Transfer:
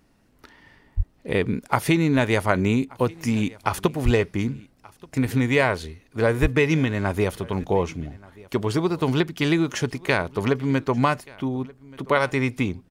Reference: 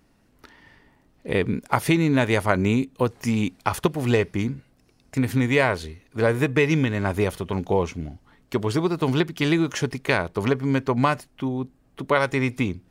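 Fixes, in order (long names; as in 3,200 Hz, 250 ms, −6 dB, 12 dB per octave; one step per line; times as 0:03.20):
0:00.96–0:01.08: high-pass filter 140 Hz 24 dB per octave
0:04.04–0:04.16: high-pass filter 140 Hz 24 dB per octave
0:06.41–0:06.53: high-pass filter 140 Hz 24 dB per octave
echo removal 1,180 ms −23.5 dB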